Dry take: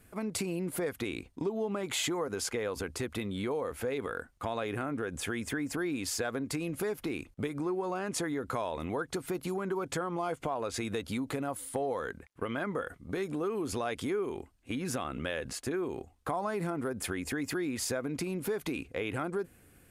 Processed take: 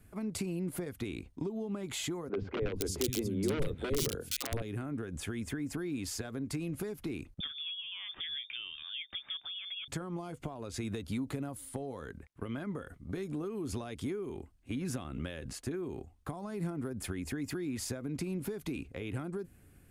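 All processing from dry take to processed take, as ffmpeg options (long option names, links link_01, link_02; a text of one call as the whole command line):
ffmpeg -i in.wav -filter_complex "[0:a]asettb=1/sr,asplit=3[link_01][link_02][link_03];[link_01]atrim=end=2.294[link_04];[link_02]atrim=start=2.29:end=4.62,asetpts=PTS-STARTPTS,afade=type=in:duration=0.004:curve=qsin,afade=type=out:start_time=2.326:duration=0.004:curve=qsin,equalizer=frequency=440:width_type=o:width=1.6:gain=12.5,aeval=exprs='(mod(6.68*val(0)+1,2)-1)/6.68':channel_layout=same,acrossover=split=210|2600[link_05][link_06][link_07];[link_05]adelay=80[link_08];[link_07]adelay=470[link_09];[link_08][link_06][link_09]amix=inputs=3:normalize=0,atrim=end_sample=102753[link_10];[link_03]atrim=start=4.616[link_11];[link_04][link_10]acrossfade=duration=0.004:curve1=hsin:curve2=qsin[link_12];[link_12][link_11]acrossfade=duration=0.004:curve1=qsin:curve2=hsin,asettb=1/sr,asplit=3[link_13][link_14][link_15];[link_13]atrim=end=7.404[link_16];[link_14]atrim=start=7.4:end=9.88,asetpts=PTS-STARTPTS,afade=type=in:duration=0.004:curve=qsin,afade=type=out:start_time=2.476:duration=0.004:curve=qsin,tremolo=f=1.1:d=0.38,lowpass=frequency=3100:width_type=q:width=0.5098,lowpass=frequency=3100:width_type=q:width=0.6013,lowpass=frequency=3100:width_type=q:width=0.9,lowpass=frequency=3100:width_type=q:width=2.563,afreqshift=-3700[link_17];[link_15]atrim=start=9.876[link_18];[link_16][link_17]acrossfade=duration=0.004:curve1=hsin:curve2=qsin[link_19];[link_19][link_18]acrossfade=duration=0.004:curve1=qsin:curve2=hsin,lowshelf=frequency=230:gain=9,bandreject=frequency=490:width=14,acrossover=split=370|3000[link_20][link_21][link_22];[link_21]acompressor=threshold=-39dB:ratio=6[link_23];[link_20][link_23][link_22]amix=inputs=3:normalize=0,volume=-5dB" out.wav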